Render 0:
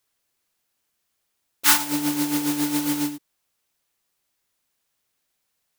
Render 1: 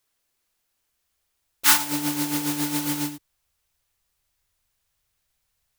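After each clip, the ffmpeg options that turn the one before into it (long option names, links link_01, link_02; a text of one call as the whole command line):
ffmpeg -i in.wav -af "asubboost=boost=11:cutoff=80" out.wav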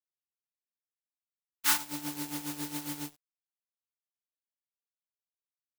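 ffmpeg -i in.wav -af "aeval=exprs='sgn(val(0))*max(abs(val(0))-0.0224,0)':channel_layout=same,volume=-8.5dB" out.wav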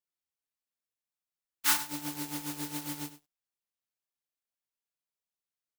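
ffmpeg -i in.wav -af "aecho=1:1:100:0.178" out.wav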